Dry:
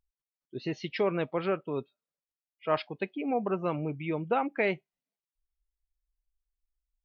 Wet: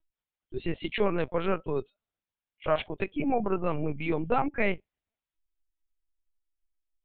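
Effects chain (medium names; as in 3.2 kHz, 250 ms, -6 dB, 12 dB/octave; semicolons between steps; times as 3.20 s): in parallel at -3 dB: peak limiter -27 dBFS, peak gain reduction 11.5 dB; on the sum: LPC vocoder at 8 kHz pitch kept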